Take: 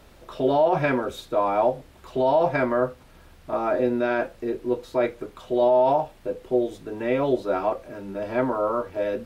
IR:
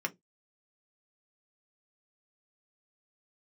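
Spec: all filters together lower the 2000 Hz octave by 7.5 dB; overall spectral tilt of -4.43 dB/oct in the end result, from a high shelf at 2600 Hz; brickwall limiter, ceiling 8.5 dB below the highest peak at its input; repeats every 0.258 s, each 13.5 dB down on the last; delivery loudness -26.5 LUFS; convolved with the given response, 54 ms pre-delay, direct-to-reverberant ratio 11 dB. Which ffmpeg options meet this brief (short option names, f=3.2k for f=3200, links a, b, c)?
-filter_complex "[0:a]equalizer=f=2k:t=o:g=-7.5,highshelf=f=2.6k:g=-7,alimiter=limit=-20dB:level=0:latency=1,aecho=1:1:258|516:0.211|0.0444,asplit=2[a][b];[1:a]atrim=start_sample=2205,adelay=54[c];[b][c]afir=irnorm=-1:irlink=0,volume=-15.5dB[d];[a][d]amix=inputs=2:normalize=0,volume=3dB"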